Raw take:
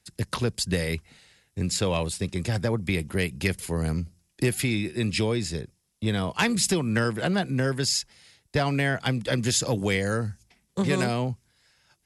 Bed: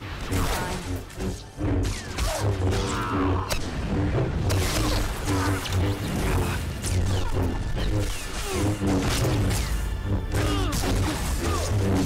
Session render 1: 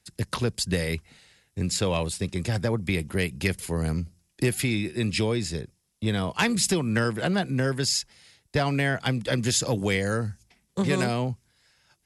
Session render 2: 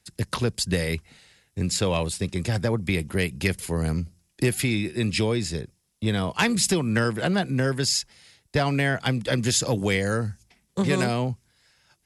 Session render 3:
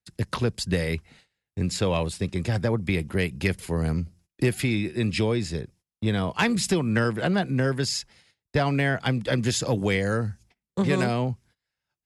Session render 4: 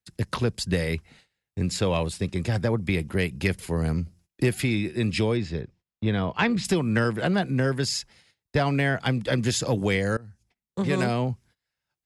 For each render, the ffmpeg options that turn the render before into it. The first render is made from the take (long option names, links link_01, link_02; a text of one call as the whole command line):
ffmpeg -i in.wav -af anull out.wav
ffmpeg -i in.wav -af "volume=1.5dB" out.wav
ffmpeg -i in.wav -af "highshelf=frequency=4900:gain=-8.5,agate=range=-21dB:threshold=-53dB:ratio=16:detection=peak" out.wav
ffmpeg -i in.wav -filter_complex "[0:a]asettb=1/sr,asplit=3[link_01][link_02][link_03];[link_01]atrim=end=5.374[link_04];[link_02]atrim=start=5.37:end=6.65,asetpts=PTS-STARTPTS,afade=type=in:duration=0.004:curve=qsin,afade=type=out:start_time=1.276:duration=0.004:curve=qsin,lowpass=3700[link_05];[link_03]atrim=start=6.646[link_06];[link_04][link_05]acrossfade=duration=0.004:curve1=hsin:curve2=qsin[link_07];[link_07][link_06]acrossfade=duration=0.004:curve1=qsin:curve2=hsin,asplit=2[link_08][link_09];[link_08]atrim=end=10.17,asetpts=PTS-STARTPTS,afade=type=out:start_time=10.166:duration=0.004:curve=hsin:silence=0.0707946[link_10];[link_09]atrim=start=10.17,asetpts=PTS-STARTPTS,afade=type=in:duration=0.91:silence=0.0707946[link_11];[link_10][link_11]concat=n=2:v=0:a=1" out.wav